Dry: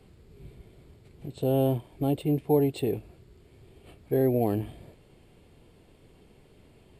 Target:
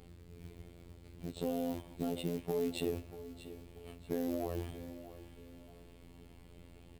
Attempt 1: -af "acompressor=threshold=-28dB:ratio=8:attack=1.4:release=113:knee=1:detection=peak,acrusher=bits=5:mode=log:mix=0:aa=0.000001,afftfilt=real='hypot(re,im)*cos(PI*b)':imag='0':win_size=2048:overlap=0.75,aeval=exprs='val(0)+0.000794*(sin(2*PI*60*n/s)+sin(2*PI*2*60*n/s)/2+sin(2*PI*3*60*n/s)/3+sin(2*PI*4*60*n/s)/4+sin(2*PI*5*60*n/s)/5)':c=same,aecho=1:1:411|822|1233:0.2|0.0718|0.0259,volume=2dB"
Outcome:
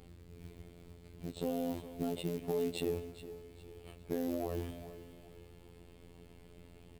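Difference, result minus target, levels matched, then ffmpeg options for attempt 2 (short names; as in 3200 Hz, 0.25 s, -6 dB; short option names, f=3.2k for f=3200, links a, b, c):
echo 0.224 s early
-af "acompressor=threshold=-28dB:ratio=8:attack=1.4:release=113:knee=1:detection=peak,acrusher=bits=5:mode=log:mix=0:aa=0.000001,afftfilt=real='hypot(re,im)*cos(PI*b)':imag='0':win_size=2048:overlap=0.75,aeval=exprs='val(0)+0.000794*(sin(2*PI*60*n/s)+sin(2*PI*2*60*n/s)/2+sin(2*PI*3*60*n/s)/3+sin(2*PI*4*60*n/s)/4+sin(2*PI*5*60*n/s)/5)':c=same,aecho=1:1:635|1270|1905:0.2|0.0718|0.0259,volume=2dB"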